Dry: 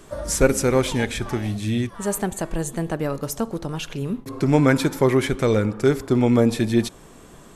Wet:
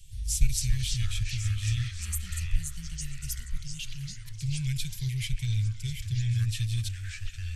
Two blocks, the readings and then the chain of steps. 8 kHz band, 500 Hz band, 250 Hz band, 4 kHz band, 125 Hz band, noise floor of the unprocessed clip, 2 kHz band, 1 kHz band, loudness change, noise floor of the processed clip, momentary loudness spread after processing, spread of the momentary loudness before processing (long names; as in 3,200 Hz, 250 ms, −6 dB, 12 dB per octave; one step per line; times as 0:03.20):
−4.5 dB, below −40 dB, −22.5 dB, −3.5 dB, −3.5 dB, −46 dBFS, −13.0 dB, below −30 dB, −10.0 dB, −41 dBFS, 10 LU, 10 LU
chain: elliptic band-stop filter 120–2,800 Hz, stop band 40 dB
low-shelf EQ 87 Hz +10.5 dB
delay with pitch and tempo change per echo 141 ms, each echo −5 semitones, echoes 2, each echo −6 dB
on a send: echo through a band-pass that steps 365 ms, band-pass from 880 Hz, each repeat 1.4 octaves, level −4 dB
on the sum: level −5 dB